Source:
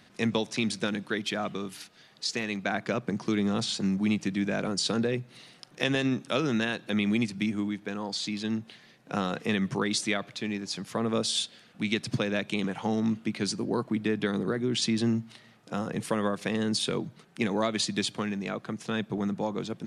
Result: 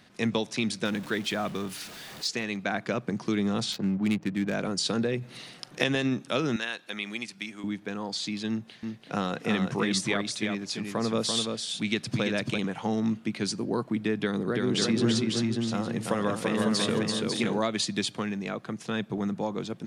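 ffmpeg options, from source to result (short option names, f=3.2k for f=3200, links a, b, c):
-filter_complex "[0:a]asettb=1/sr,asplit=3[a][b][c];[a]atrim=end=0.854[d];[b]atrim=start=0.85:end=2.28,asetpts=PTS-STARTPTS,afade=t=in:d=0.004:c=qsin,afade=t=out:st=1.426:d=0.004:c=qsin,aeval=exprs='val(0)+0.5*0.0112*sgn(val(0))':c=same[e];[c]atrim=start=2.276[f];[d][e]acrossfade=d=0.004:c1=hsin:c2=qsin[g];[g][f]acrossfade=d=0.004:c1=qsin:c2=hsin,asettb=1/sr,asplit=3[h][i][j];[h]atrim=end=3.724[k];[i]atrim=start=3.72:end=4.54,asetpts=PTS-STARTPTS,afade=t=in:d=0.004:c=qsin,afade=t=out:st=0.816:d=0.004:c=qsin,adynamicsmooth=sensitivity=7:basefreq=810[l];[j]atrim=start=4.536[m];[k][l]acrossfade=d=0.004:c1=hsin:c2=qsin[n];[n][m]acrossfade=d=0.004:c1=qsin:c2=hsin,asplit=3[o][p][q];[o]afade=t=out:st=5.21:d=0.02[r];[p]acontrast=69,afade=t=in:st=5.21:d=0.02,afade=t=out:st=5.82:d=0.02[s];[q]afade=t=in:st=5.82:d=0.02[t];[r][s][t]amix=inputs=3:normalize=0,asettb=1/sr,asplit=3[u][v][w];[u]atrim=end=6.564[x];[v]atrim=start=6.56:end=7.64,asetpts=PTS-STARTPTS,afade=t=in:d=0.004:c=qsin,afade=t=out:st=1.076:d=0.004:c=qsin,highpass=f=1.1k:p=1[y];[w]atrim=start=7.636[z];[x][y]acrossfade=d=0.004:c1=hsin:c2=qsin[aa];[aa][z]acrossfade=d=0.004:c1=qsin:c2=hsin,asettb=1/sr,asplit=3[ab][ac][ad];[ab]atrim=end=8.494[ae];[ac]atrim=start=8.49:end=12.58,asetpts=PTS-STARTPTS,afade=t=in:d=0.004:c=qsin,afade=t=out:st=4.086:d=0.004:c=qsin,aecho=1:1:338:0.562,atrim=end_sample=180369[af];[ad]atrim=start=12.576[ag];[ae][af]acrossfade=d=0.004:c1=hsin:c2=qsin[ah];[ah][ag]acrossfade=d=0.004:c1=qsin:c2=hsin,asettb=1/sr,asplit=3[ai][aj][ak];[ai]atrim=end=14.204[al];[aj]atrim=start=14.2:end=17.59,asetpts=PTS-STARTPTS,afade=t=in:d=0.004:c=qsin,afade=t=out:st=3.386:d=0.004:c=qsin,aecho=1:1:336|548|859:0.708|0.596|0.299,atrim=end_sample=149499[am];[ak]atrim=start=17.586[an];[al][am]acrossfade=d=0.004:c1=hsin:c2=qsin[ao];[ao][an]acrossfade=d=0.004:c1=qsin:c2=hsin"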